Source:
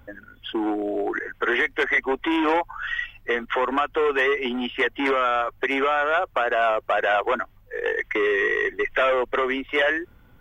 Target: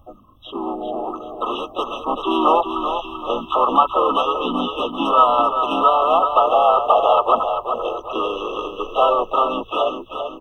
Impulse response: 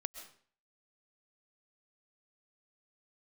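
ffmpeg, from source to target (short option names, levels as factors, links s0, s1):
-filter_complex "[0:a]equalizer=f=125:t=o:w=0.33:g=-5,equalizer=f=400:t=o:w=0.33:g=-10,equalizer=f=630:t=o:w=0.33:g=5,equalizer=f=1250:t=o:w=0.33:g=12,equalizer=f=4000:t=o:w=0.33:g=-11,dynaudnorm=f=480:g=7:m=2.51,aecho=1:1:389|778|1167|1556|1945:0.422|0.173|0.0709|0.0291|0.0119,asplit=3[s0][s1][s2];[s1]asetrate=33038,aresample=44100,atempo=1.33484,volume=0.316[s3];[s2]asetrate=52444,aresample=44100,atempo=0.840896,volume=0.708[s4];[s0][s3][s4]amix=inputs=3:normalize=0,afftfilt=real='re*eq(mod(floor(b*sr/1024/1300),2),0)':imag='im*eq(mod(floor(b*sr/1024/1300),2),0)':win_size=1024:overlap=0.75,volume=0.794"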